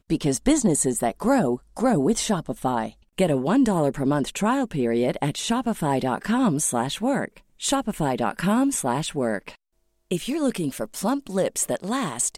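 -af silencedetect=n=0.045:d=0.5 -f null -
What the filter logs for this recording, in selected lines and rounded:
silence_start: 9.49
silence_end: 10.11 | silence_duration: 0.62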